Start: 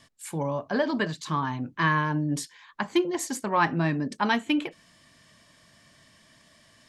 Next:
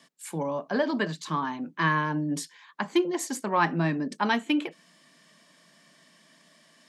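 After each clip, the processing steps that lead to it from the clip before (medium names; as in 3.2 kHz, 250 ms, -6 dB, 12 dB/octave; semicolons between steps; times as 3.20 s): elliptic high-pass 160 Hz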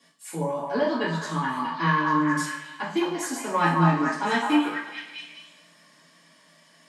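repeats whose band climbs or falls 212 ms, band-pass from 990 Hz, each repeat 0.7 oct, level -0.5 dB; two-slope reverb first 0.47 s, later 1.6 s, from -18 dB, DRR -9.5 dB; trim -8.5 dB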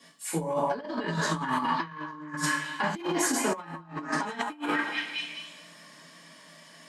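compressor with a negative ratio -30 dBFS, ratio -0.5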